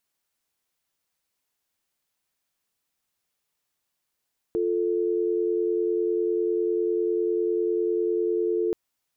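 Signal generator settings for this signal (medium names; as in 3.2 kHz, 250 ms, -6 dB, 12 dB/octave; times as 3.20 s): call progress tone dial tone, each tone -24.5 dBFS 4.18 s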